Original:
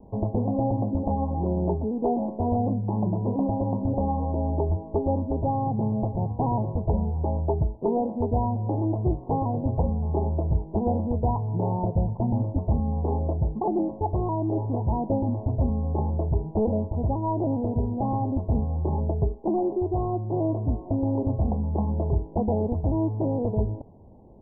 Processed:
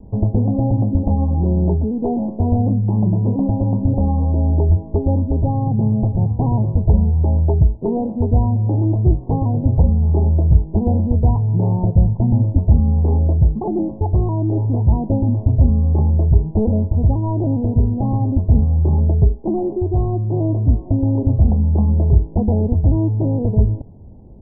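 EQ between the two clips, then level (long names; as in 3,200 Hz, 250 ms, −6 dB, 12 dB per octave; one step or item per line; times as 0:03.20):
low-shelf EQ 170 Hz +6 dB
low-shelf EQ 480 Hz +11.5 dB
−4.0 dB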